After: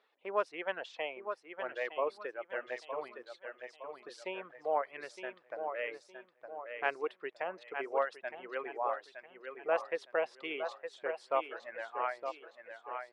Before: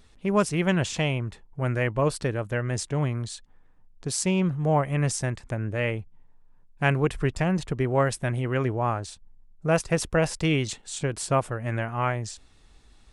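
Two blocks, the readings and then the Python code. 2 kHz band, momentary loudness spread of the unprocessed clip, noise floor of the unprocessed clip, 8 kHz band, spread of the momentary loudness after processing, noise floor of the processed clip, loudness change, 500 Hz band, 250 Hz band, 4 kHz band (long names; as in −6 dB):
−8.5 dB, 9 LU, −56 dBFS, below −30 dB, 13 LU, −67 dBFS, −12.0 dB, −8.5 dB, −24.0 dB, −14.0 dB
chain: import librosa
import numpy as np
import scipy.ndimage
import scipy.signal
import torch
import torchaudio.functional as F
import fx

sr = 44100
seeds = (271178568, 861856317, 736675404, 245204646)

y = fx.air_absorb(x, sr, metres=350.0)
y = fx.echo_feedback(y, sr, ms=913, feedback_pct=49, wet_db=-6.5)
y = fx.dereverb_blind(y, sr, rt60_s=2.0)
y = scipy.signal.sosfilt(scipy.signal.butter(4, 460.0, 'highpass', fs=sr, output='sos'), y)
y = F.gain(torch.from_numpy(y), -5.0).numpy()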